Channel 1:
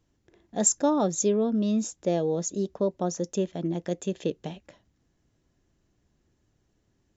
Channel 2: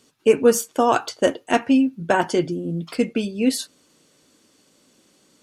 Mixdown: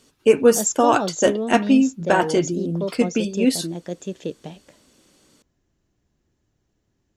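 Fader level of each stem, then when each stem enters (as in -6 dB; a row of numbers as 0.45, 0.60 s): -0.5, +1.0 dB; 0.00, 0.00 s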